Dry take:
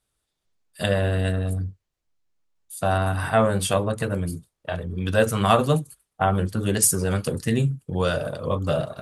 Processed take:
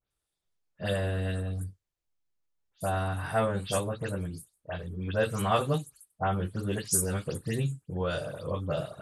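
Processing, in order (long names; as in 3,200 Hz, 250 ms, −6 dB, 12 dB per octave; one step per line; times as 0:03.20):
every frequency bin delayed by itself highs late, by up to 106 ms
level −7.5 dB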